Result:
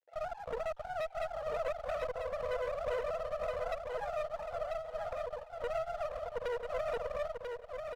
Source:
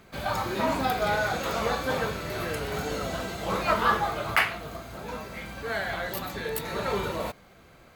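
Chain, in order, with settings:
three sine waves on the formant tracks
elliptic low-pass filter 660 Hz, stop band 80 dB
comb filter 4.6 ms, depth 100%
downward compressor 3 to 1, threshold −39 dBFS, peak gain reduction 18 dB
pitch-shifted copies added +3 semitones −14 dB, +12 semitones −15 dB
dead-zone distortion −57 dBFS
high-pass with resonance 500 Hz, resonance Q 4.9
asymmetric clip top −43.5 dBFS, bottom −27 dBFS
repeating echo 991 ms, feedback 20%, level −5 dB
level −1.5 dB

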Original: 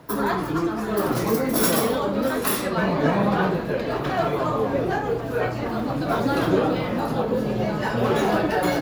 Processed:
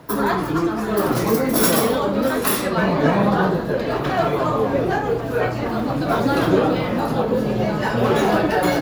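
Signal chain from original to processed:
0:03.30–0:03.81: parametric band 2,400 Hz −9 dB 0.43 octaves
level +3.5 dB

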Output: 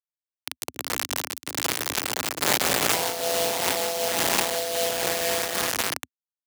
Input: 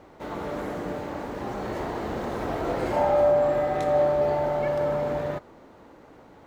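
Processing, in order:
on a send: feedback delay with all-pass diffusion 527 ms, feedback 41%, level −3 dB
on the sum: bit reduction 4 bits
Butterworth high-pass 160 Hz 72 dB per octave
ring modulation 88 Hz
in parallel at +1.5 dB: compressor whose output falls as the input rises −29 dBFS, ratio −0.5
on the sum: high-shelf EQ 2,900 Hz +11.5 dB
amplitude modulation by smooth noise, depth 65%
level −4.5 dB

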